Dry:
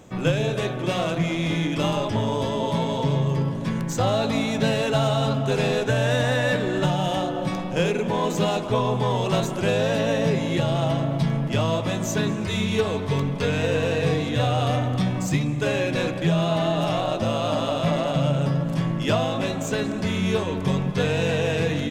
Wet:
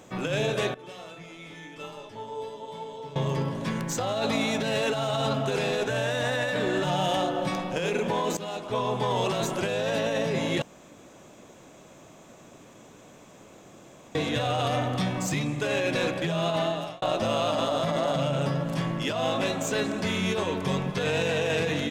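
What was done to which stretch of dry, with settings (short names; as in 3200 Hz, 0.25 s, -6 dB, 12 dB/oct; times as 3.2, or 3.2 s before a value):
0.74–3.16 resonator 440 Hz, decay 0.41 s, mix 90%
8.37–9.18 fade in, from -15.5 dB
10.62–14.15 room tone
16.51–17.02 fade out
17.64–18.19 bell 2600 Hz -8 dB 0.31 oct
whole clip: low shelf 210 Hz -10.5 dB; negative-ratio compressor -26 dBFS, ratio -1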